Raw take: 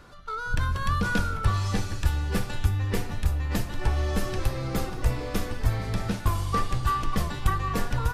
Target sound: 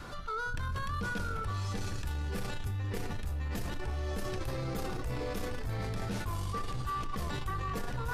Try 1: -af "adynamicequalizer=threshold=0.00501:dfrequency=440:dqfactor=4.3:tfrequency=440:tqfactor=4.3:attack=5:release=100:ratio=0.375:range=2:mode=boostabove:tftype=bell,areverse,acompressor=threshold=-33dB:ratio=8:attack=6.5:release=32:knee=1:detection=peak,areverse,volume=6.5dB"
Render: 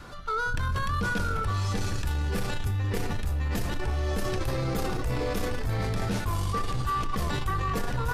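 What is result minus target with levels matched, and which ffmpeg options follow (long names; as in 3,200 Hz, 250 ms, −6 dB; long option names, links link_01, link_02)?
downward compressor: peak gain reduction −7 dB
-af "adynamicequalizer=threshold=0.00501:dfrequency=440:dqfactor=4.3:tfrequency=440:tqfactor=4.3:attack=5:release=100:ratio=0.375:range=2:mode=boostabove:tftype=bell,areverse,acompressor=threshold=-41dB:ratio=8:attack=6.5:release=32:knee=1:detection=peak,areverse,volume=6.5dB"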